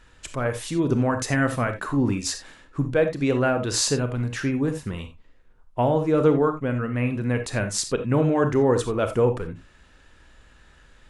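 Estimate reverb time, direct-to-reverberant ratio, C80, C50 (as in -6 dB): not exponential, 7.5 dB, 16.0 dB, 10.0 dB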